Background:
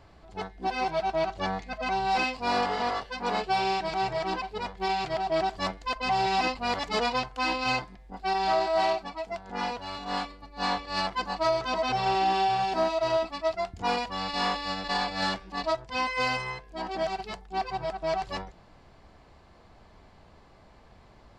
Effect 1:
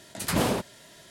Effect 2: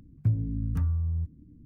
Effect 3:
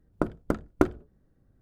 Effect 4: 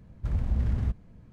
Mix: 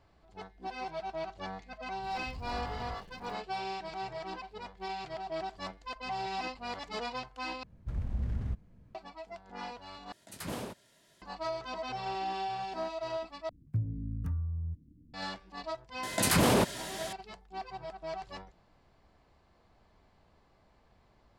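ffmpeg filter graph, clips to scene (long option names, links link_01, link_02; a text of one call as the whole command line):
ffmpeg -i bed.wav -i cue0.wav -i cue1.wav -i cue2.wav -i cue3.wav -filter_complex "[4:a]asplit=2[link_01][link_02];[1:a]asplit=2[link_03][link_04];[0:a]volume=-10.5dB[link_05];[link_01]aeval=exprs='val(0)+0.5*0.0266*sgn(val(0))':channel_layout=same[link_06];[link_04]alimiter=level_in=25dB:limit=-1dB:release=50:level=0:latency=1[link_07];[link_05]asplit=4[link_08][link_09][link_10][link_11];[link_08]atrim=end=7.634[link_12];[link_02]atrim=end=1.32,asetpts=PTS-STARTPTS,volume=-7dB[link_13];[link_09]atrim=start=8.946:end=10.124[link_14];[link_03]atrim=end=1.1,asetpts=PTS-STARTPTS,volume=-14dB[link_15];[link_10]atrim=start=11.216:end=13.494[link_16];[2:a]atrim=end=1.65,asetpts=PTS-STARTPTS,volume=-7dB[link_17];[link_11]atrim=start=15.136[link_18];[link_06]atrim=end=1.32,asetpts=PTS-STARTPTS,volume=-18dB,afade=type=in:duration=0.004:curve=hsin,afade=type=out:start_time=1.316:duration=0.004:curve=hsin,adelay=2030[link_19];[link_07]atrim=end=1.1,asetpts=PTS-STARTPTS,volume=-15dB,afade=type=in:duration=0.004:curve=hsin,afade=type=out:start_time=1.096:duration=0.004:curve=hsin,adelay=16030[link_20];[link_12][link_13]acrossfade=duration=0.004:curve1=hsin:curve2=hsin[link_21];[link_21][link_14]acrossfade=duration=0.004:curve1=hsin:curve2=hsin[link_22];[link_22][link_15]acrossfade=duration=0.004:curve1=hsin:curve2=hsin[link_23];[link_23][link_16]acrossfade=duration=0.004:curve1=hsin:curve2=hsin[link_24];[link_24][link_17]acrossfade=duration=0.004:curve1=hsin:curve2=hsin[link_25];[link_25][link_18]acrossfade=duration=0.004:curve1=hsin:curve2=hsin[link_26];[link_26][link_19][link_20]amix=inputs=3:normalize=0" out.wav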